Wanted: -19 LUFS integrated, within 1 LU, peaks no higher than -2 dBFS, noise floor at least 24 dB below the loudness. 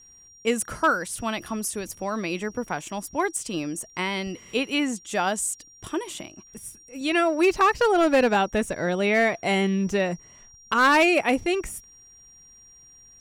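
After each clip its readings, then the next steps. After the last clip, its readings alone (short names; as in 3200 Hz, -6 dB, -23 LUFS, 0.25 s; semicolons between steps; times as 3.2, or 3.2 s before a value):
clipped 0.5%; flat tops at -13.0 dBFS; steady tone 5700 Hz; tone level -49 dBFS; loudness -24.0 LUFS; peak -13.0 dBFS; loudness target -19.0 LUFS
-> clip repair -13 dBFS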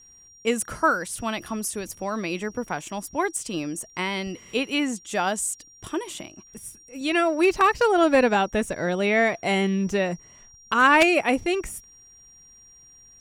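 clipped 0.0%; steady tone 5700 Hz; tone level -49 dBFS
-> notch 5700 Hz, Q 30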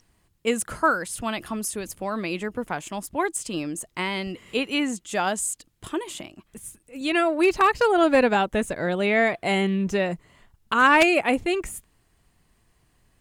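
steady tone none; loudness -23.5 LUFS; peak -4.0 dBFS; loudness target -19.0 LUFS
-> gain +4.5 dB; limiter -2 dBFS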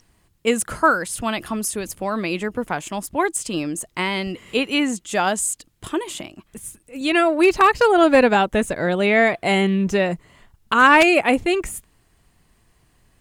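loudness -19.5 LUFS; peak -2.0 dBFS; noise floor -62 dBFS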